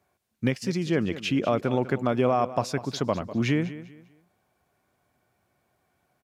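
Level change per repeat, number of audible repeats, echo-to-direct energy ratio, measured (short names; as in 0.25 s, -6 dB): -11.0 dB, 2, -14.5 dB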